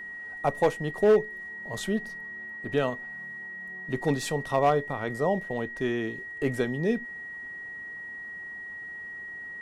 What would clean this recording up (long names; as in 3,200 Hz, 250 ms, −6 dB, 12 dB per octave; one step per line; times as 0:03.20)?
clipped peaks rebuilt −14.5 dBFS
notch filter 1,900 Hz, Q 30